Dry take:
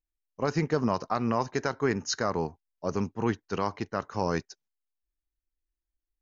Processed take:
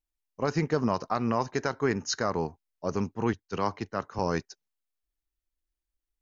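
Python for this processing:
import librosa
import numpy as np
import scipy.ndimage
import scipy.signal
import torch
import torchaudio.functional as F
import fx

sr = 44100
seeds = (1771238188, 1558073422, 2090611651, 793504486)

y = fx.band_widen(x, sr, depth_pct=70, at=(3.33, 4.19))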